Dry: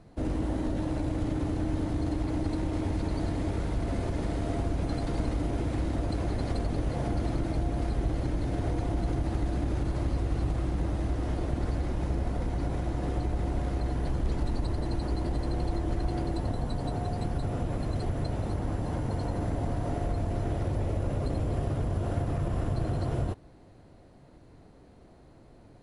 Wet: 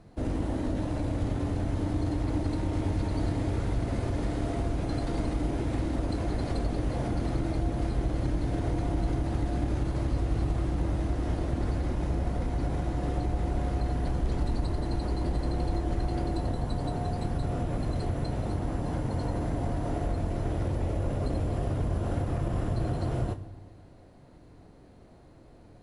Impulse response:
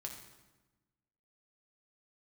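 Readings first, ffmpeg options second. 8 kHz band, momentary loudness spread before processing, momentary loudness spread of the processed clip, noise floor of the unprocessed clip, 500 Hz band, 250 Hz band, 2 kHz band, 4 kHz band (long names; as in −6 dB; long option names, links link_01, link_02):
+0.5 dB, 1 LU, 2 LU, −54 dBFS, +0.5 dB, +0.5 dB, +0.5 dB, +0.5 dB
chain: -filter_complex "[0:a]asplit=2[link_01][link_02];[1:a]atrim=start_sample=2205,asetrate=36603,aresample=44100,adelay=24[link_03];[link_02][link_03]afir=irnorm=-1:irlink=0,volume=-8dB[link_04];[link_01][link_04]amix=inputs=2:normalize=0"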